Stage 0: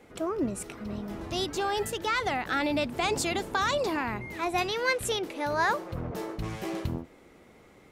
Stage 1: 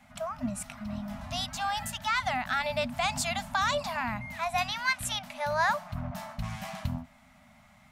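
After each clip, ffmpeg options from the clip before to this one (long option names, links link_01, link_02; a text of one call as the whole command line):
ffmpeg -i in.wav -af "afftfilt=real='re*(1-between(b*sr/4096,260,580))':imag='im*(1-between(b*sr/4096,260,580))':win_size=4096:overlap=0.75" out.wav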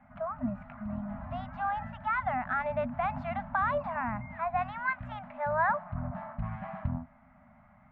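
ffmpeg -i in.wav -af "lowpass=frequency=1700:width=0.5412,lowpass=frequency=1700:width=1.3066" out.wav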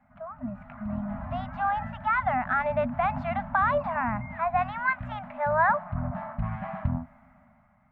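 ffmpeg -i in.wav -af "dynaudnorm=framelen=120:gausssize=11:maxgain=10dB,volume=-5dB" out.wav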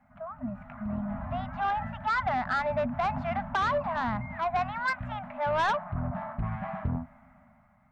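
ffmpeg -i in.wav -af "asoftclip=type=tanh:threshold=-21.5dB" out.wav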